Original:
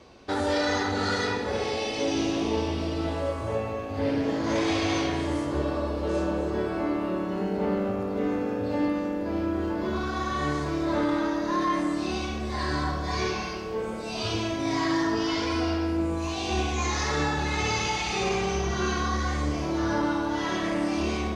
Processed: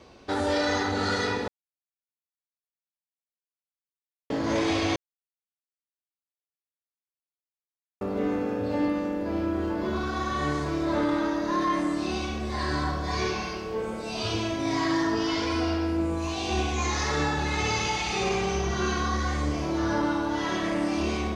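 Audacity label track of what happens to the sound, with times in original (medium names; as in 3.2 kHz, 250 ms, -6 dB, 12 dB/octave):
1.480000	4.300000	mute
4.960000	8.010000	mute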